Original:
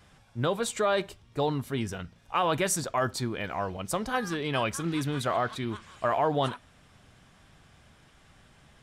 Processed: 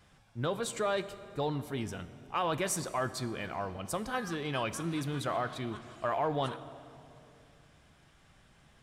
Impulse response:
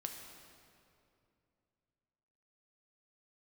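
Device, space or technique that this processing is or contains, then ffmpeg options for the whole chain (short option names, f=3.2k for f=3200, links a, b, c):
saturated reverb return: -filter_complex "[0:a]asplit=2[a][b];[1:a]atrim=start_sample=2205[c];[b][c]afir=irnorm=-1:irlink=0,asoftclip=type=tanh:threshold=-23.5dB,volume=-3dB[d];[a][d]amix=inputs=2:normalize=0,volume=-8dB"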